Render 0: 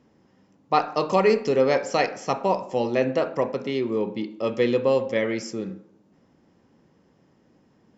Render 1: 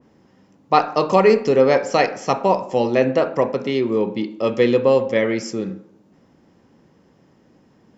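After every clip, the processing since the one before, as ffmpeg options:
ffmpeg -i in.wav -af "adynamicequalizer=threshold=0.0178:dfrequency=2200:dqfactor=0.7:tfrequency=2200:tqfactor=0.7:attack=5:release=100:ratio=0.375:range=2:mode=cutabove:tftype=highshelf,volume=5.5dB" out.wav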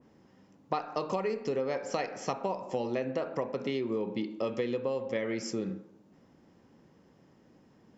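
ffmpeg -i in.wav -af "acompressor=threshold=-22dB:ratio=12,volume=-6dB" out.wav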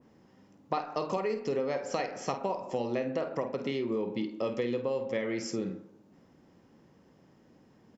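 ffmpeg -i in.wav -filter_complex "[0:a]asplit=2[link_01][link_02];[link_02]adelay=50,volume=-11dB[link_03];[link_01][link_03]amix=inputs=2:normalize=0" out.wav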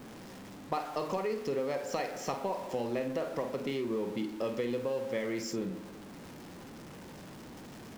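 ffmpeg -i in.wav -af "aeval=exprs='val(0)+0.5*0.01*sgn(val(0))':channel_layout=same,volume=-3dB" out.wav

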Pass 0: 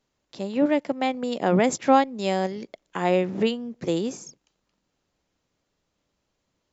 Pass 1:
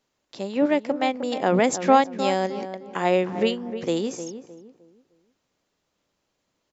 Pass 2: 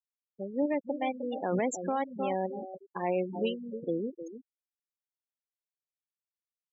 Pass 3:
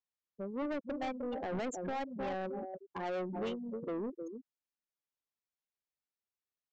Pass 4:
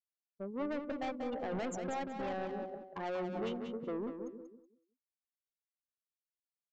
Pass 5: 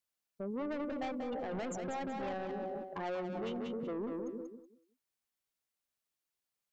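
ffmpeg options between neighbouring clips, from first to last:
ffmpeg -i in.wav -filter_complex "[0:a]lowshelf=frequency=160:gain=-9.5,asplit=2[link_01][link_02];[link_02]adelay=307,lowpass=frequency=1400:poles=1,volume=-10dB,asplit=2[link_03][link_04];[link_04]adelay=307,lowpass=frequency=1400:poles=1,volume=0.33,asplit=2[link_05][link_06];[link_06]adelay=307,lowpass=frequency=1400:poles=1,volume=0.33,asplit=2[link_07][link_08];[link_08]adelay=307,lowpass=frequency=1400:poles=1,volume=0.33[link_09];[link_01][link_03][link_05][link_07][link_09]amix=inputs=5:normalize=0,volume=2dB" out.wav
ffmpeg -i in.wav -af "afftfilt=real='re*gte(hypot(re,im),0.1)':imag='im*gte(hypot(re,im),0.1)':win_size=1024:overlap=0.75,alimiter=limit=-13.5dB:level=0:latency=1:release=26,volume=-7dB" out.wav
ffmpeg -i in.wav -af "highshelf=frequency=4200:gain=-9,aresample=16000,asoftclip=type=tanh:threshold=-33dB,aresample=44100" out.wav
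ffmpeg -i in.wav -filter_complex "[0:a]agate=range=-33dB:threshold=-41dB:ratio=3:detection=peak,asplit=2[link_01][link_02];[link_02]aecho=0:1:187|374|561:0.422|0.0886|0.0186[link_03];[link_01][link_03]amix=inputs=2:normalize=0,volume=-1dB" out.wav
ffmpeg -i in.wav -af "alimiter=level_in=16dB:limit=-24dB:level=0:latency=1:release=11,volume=-16dB,volume=6.5dB" out.wav

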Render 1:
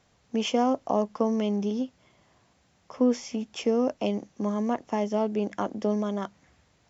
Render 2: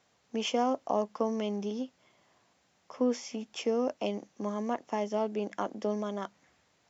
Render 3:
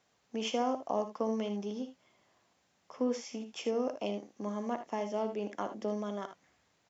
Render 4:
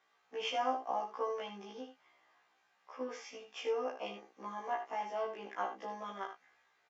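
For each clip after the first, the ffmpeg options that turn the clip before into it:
ffmpeg -i in.wav -af "highpass=frequency=310:poles=1,volume=-2.5dB" out.wav
ffmpeg -i in.wav -af "aecho=1:1:59|77:0.237|0.266,volume=-3.5dB" out.wav
ffmpeg -i in.wav -filter_complex "[0:a]bandpass=frequency=1500:width_type=q:width=0.95:csg=0,asplit=2[link_01][link_02];[link_02]adelay=18,volume=-7dB[link_03];[link_01][link_03]amix=inputs=2:normalize=0,afftfilt=real='re*1.73*eq(mod(b,3),0)':imag='im*1.73*eq(mod(b,3),0)':win_size=2048:overlap=0.75,volume=5.5dB" out.wav

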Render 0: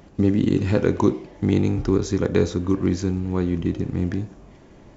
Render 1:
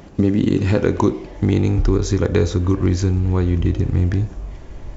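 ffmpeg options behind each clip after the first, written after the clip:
ffmpeg -i in.wav -af "asubboost=boost=7.5:cutoff=73,acompressor=threshold=-22dB:ratio=2,volume=7dB" out.wav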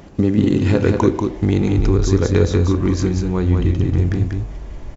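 ffmpeg -i in.wav -af "aecho=1:1:189:0.596" out.wav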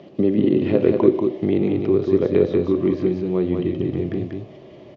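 ffmpeg -i in.wav -filter_complex "[0:a]acrossover=split=2900[link_01][link_02];[link_02]acompressor=threshold=-49dB:ratio=4:attack=1:release=60[link_03];[link_01][link_03]amix=inputs=2:normalize=0,highpass=frequency=130:width=0.5412,highpass=frequency=130:width=1.3066,equalizer=frequency=370:width_type=q:width=4:gain=8,equalizer=frequency=600:width_type=q:width=4:gain=9,equalizer=frequency=900:width_type=q:width=4:gain=-6,equalizer=frequency=1500:width_type=q:width=4:gain=-10,equalizer=frequency=3100:width_type=q:width=4:gain=5,lowpass=frequency=4700:width=0.5412,lowpass=frequency=4700:width=1.3066,volume=-4dB" out.wav

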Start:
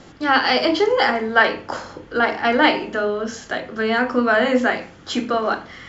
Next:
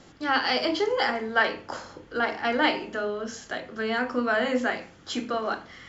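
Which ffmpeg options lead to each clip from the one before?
ffmpeg -i in.wav -af "highshelf=frequency=4600:gain=5,volume=-8dB" out.wav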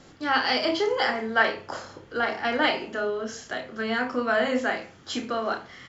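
ffmpeg -i in.wav -filter_complex "[0:a]asplit=2[link_01][link_02];[link_02]adelay=31,volume=-6.5dB[link_03];[link_01][link_03]amix=inputs=2:normalize=0" out.wav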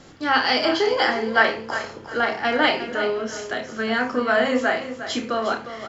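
ffmpeg -i in.wav -af "aecho=1:1:357|714|1071:0.266|0.0772|0.0224,volume=4dB" out.wav

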